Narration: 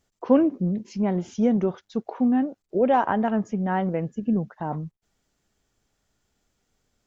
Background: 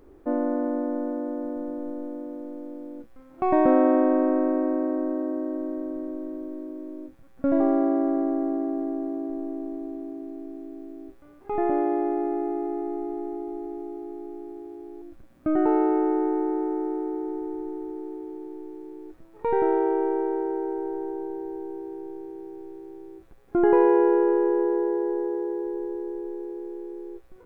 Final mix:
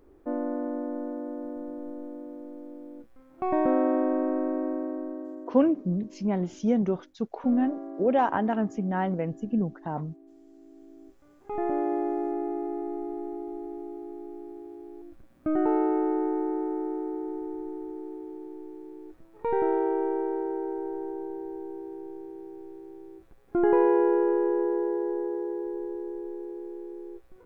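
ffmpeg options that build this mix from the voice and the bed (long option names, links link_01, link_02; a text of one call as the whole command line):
ffmpeg -i stem1.wav -i stem2.wav -filter_complex "[0:a]adelay=5250,volume=-3dB[link_01];[1:a]volume=8.5dB,afade=type=out:start_time=4.68:duration=0.99:silence=0.266073,afade=type=in:start_time=10.46:duration=1.48:silence=0.211349[link_02];[link_01][link_02]amix=inputs=2:normalize=0" out.wav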